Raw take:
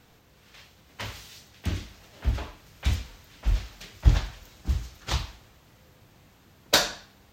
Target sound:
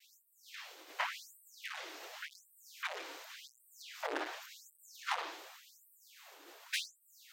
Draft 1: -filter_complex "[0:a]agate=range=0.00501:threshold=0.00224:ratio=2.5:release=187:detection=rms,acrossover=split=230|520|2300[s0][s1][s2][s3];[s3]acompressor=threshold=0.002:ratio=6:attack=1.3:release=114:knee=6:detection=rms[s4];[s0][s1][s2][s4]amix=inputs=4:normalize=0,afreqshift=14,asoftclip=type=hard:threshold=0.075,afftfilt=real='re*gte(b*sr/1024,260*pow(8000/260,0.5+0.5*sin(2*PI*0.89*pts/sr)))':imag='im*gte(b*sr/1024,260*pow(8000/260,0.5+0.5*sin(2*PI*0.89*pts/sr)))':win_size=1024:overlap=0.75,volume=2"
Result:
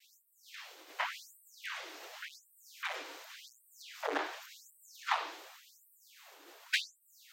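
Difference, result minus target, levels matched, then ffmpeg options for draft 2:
hard clipper: distortion -5 dB
-filter_complex "[0:a]agate=range=0.00501:threshold=0.00224:ratio=2.5:release=187:detection=rms,acrossover=split=230|520|2300[s0][s1][s2][s3];[s3]acompressor=threshold=0.002:ratio=6:attack=1.3:release=114:knee=6:detection=rms[s4];[s0][s1][s2][s4]amix=inputs=4:normalize=0,afreqshift=14,asoftclip=type=hard:threshold=0.0251,afftfilt=real='re*gte(b*sr/1024,260*pow(8000/260,0.5+0.5*sin(2*PI*0.89*pts/sr)))':imag='im*gte(b*sr/1024,260*pow(8000/260,0.5+0.5*sin(2*PI*0.89*pts/sr)))':win_size=1024:overlap=0.75,volume=2"

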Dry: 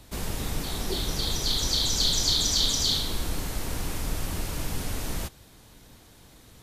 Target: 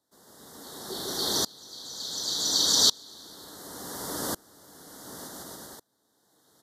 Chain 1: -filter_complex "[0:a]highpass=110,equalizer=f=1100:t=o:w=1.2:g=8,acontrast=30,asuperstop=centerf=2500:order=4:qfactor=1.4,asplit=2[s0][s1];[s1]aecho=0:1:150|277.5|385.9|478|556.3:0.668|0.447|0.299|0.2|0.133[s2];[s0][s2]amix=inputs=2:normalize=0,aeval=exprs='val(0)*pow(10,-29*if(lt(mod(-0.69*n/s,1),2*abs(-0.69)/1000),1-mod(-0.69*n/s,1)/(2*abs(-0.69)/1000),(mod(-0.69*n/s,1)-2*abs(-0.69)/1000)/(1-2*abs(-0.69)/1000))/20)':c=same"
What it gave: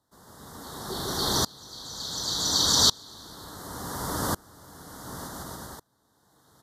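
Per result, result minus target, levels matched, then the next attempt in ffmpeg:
125 Hz band +10.5 dB; 1 kHz band +6.0 dB
-filter_complex "[0:a]highpass=270,equalizer=f=1100:t=o:w=1.2:g=8,acontrast=30,asuperstop=centerf=2500:order=4:qfactor=1.4,asplit=2[s0][s1];[s1]aecho=0:1:150|277.5|385.9|478|556.3:0.668|0.447|0.299|0.2|0.133[s2];[s0][s2]amix=inputs=2:normalize=0,aeval=exprs='val(0)*pow(10,-29*if(lt(mod(-0.69*n/s,1),2*abs(-0.69)/1000),1-mod(-0.69*n/s,1)/(2*abs(-0.69)/1000),(mod(-0.69*n/s,1)-2*abs(-0.69)/1000)/(1-2*abs(-0.69)/1000))/20)':c=same"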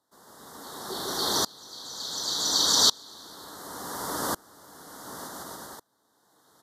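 1 kHz band +6.0 dB
-filter_complex "[0:a]highpass=270,acontrast=30,asuperstop=centerf=2500:order=4:qfactor=1.4,asplit=2[s0][s1];[s1]aecho=0:1:150|277.5|385.9|478|556.3:0.668|0.447|0.299|0.2|0.133[s2];[s0][s2]amix=inputs=2:normalize=0,aeval=exprs='val(0)*pow(10,-29*if(lt(mod(-0.69*n/s,1),2*abs(-0.69)/1000),1-mod(-0.69*n/s,1)/(2*abs(-0.69)/1000),(mod(-0.69*n/s,1)-2*abs(-0.69)/1000)/(1-2*abs(-0.69)/1000))/20)':c=same"

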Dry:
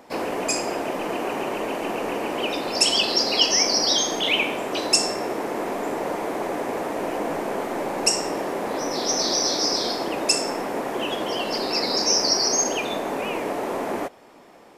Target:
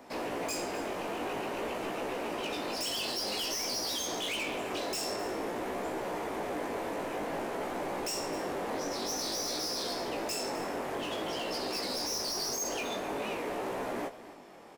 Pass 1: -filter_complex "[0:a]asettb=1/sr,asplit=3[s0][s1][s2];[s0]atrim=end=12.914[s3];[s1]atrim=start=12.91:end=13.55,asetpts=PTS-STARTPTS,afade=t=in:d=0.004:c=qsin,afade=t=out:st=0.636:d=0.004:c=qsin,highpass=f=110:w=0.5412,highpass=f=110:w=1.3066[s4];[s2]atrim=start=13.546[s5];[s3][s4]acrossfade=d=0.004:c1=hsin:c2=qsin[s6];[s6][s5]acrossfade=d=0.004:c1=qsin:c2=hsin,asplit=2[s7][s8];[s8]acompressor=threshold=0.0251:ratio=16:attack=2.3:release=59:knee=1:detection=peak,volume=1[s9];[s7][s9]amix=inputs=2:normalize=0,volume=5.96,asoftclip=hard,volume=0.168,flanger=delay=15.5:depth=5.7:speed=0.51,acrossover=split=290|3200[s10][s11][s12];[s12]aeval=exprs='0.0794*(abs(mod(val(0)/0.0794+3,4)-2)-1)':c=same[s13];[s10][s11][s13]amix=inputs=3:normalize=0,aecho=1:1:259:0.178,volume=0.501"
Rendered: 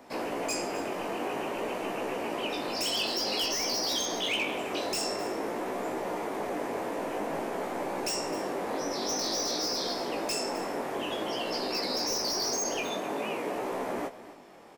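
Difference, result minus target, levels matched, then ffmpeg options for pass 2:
overload inside the chain: distortion -8 dB
-filter_complex "[0:a]asettb=1/sr,asplit=3[s0][s1][s2];[s0]atrim=end=12.914[s3];[s1]atrim=start=12.91:end=13.55,asetpts=PTS-STARTPTS,afade=t=in:d=0.004:c=qsin,afade=t=out:st=0.636:d=0.004:c=qsin,highpass=f=110:w=0.5412,highpass=f=110:w=1.3066[s4];[s2]atrim=start=13.546[s5];[s3][s4]acrossfade=d=0.004:c1=hsin:c2=qsin[s6];[s6][s5]acrossfade=d=0.004:c1=qsin:c2=hsin,asplit=2[s7][s8];[s8]acompressor=threshold=0.0251:ratio=16:attack=2.3:release=59:knee=1:detection=peak,volume=1[s9];[s7][s9]amix=inputs=2:normalize=0,volume=15,asoftclip=hard,volume=0.0668,flanger=delay=15.5:depth=5.7:speed=0.51,acrossover=split=290|3200[s10][s11][s12];[s12]aeval=exprs='0.0794*(abs(mod(val(0)/0.0794+3,4)-2)-1)':c=same[s13];[s10][s11][s13]amix=inputs=3:normalize=0,aecho=1:1:259:0.178,volume=0.501"

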